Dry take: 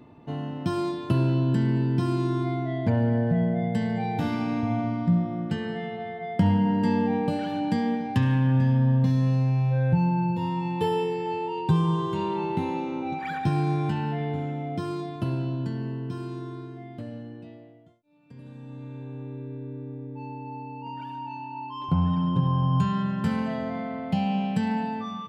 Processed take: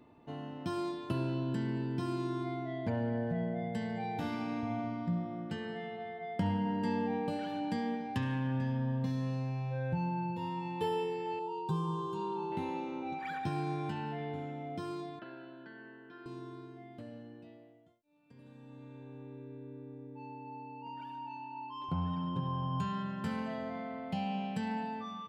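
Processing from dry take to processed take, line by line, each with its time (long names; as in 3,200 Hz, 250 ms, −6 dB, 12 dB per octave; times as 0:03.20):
0:11.39–0:12.52: phaser with its sweep stopped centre 400 Hz, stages 8
0:15.19–0:16.26: loudspeaker in its box 460–3,300 Hz, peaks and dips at 460 Hz −5 dB, 700 Hz −3 dB, 1,000 Hz −8 dB, 1,600 Hz +10 dB, 2,700 Hz −7 dB
whole clip: parametric band 130 Hz −6.5 dB 1.6 octaves; level −7 dB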